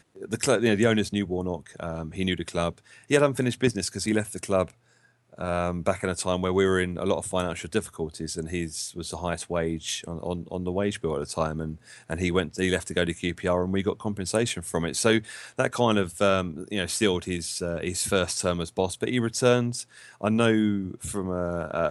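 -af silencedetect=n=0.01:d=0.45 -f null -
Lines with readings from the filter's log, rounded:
silence_start: 4.70
silence_end: 5.33 | silence_duration: 0.63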